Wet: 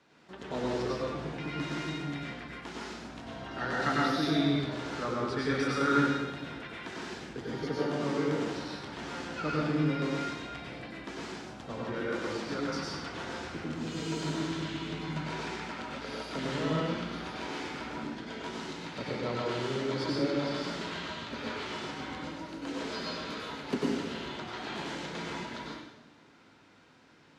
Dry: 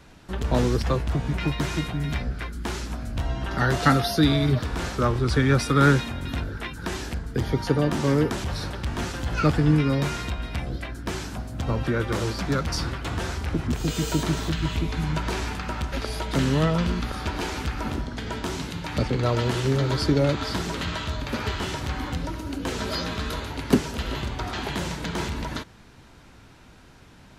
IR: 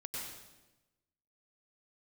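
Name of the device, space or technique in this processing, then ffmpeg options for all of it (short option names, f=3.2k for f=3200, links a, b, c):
supermarket ceiling speaker: -filter_complex "[0:a]highpass=220,lowpass=6k[a];[1:a]atrim=start_sample=2205[b];[a][b]afir=irnorm=-1:irlink=0,volume=-6dB"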